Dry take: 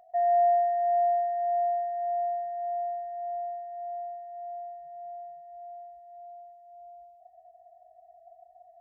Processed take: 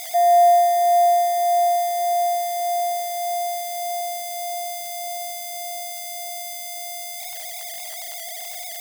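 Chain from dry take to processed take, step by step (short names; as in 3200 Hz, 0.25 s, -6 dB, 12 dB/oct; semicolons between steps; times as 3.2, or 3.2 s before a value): switching spikes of -26.5 dBFS; gain +8.5 dB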